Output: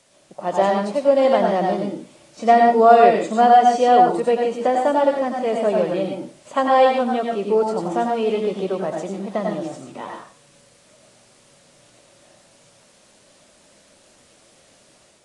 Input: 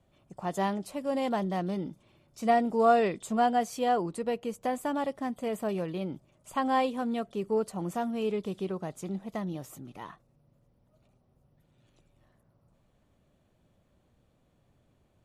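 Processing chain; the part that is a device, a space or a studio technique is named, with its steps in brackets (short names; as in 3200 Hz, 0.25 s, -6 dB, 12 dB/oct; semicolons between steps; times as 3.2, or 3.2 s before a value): filmed off a television (BPF 220–6300 Hz; bell 570 Hz +9.5 dB 0.46 oct; reverb RT60 0.30 s, pre-delay 87 ms, DRR 1.5 dB; white noise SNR 34 dB; AGC gain up to 4 dB; gain +3.5 dB; AAC 32 kbps 22050 Hz)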